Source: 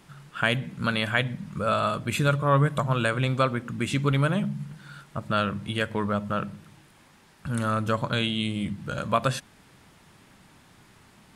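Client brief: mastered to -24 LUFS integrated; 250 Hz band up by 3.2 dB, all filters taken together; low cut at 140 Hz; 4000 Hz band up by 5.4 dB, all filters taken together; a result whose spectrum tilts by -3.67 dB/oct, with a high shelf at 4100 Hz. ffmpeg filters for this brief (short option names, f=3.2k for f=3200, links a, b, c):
-af "highpass=140,equalizer=f=250:t=o:g=5,equalizer=f=4k:t=o:g=4.5,highshelf=f=4.1k:g=5,volume=1dB"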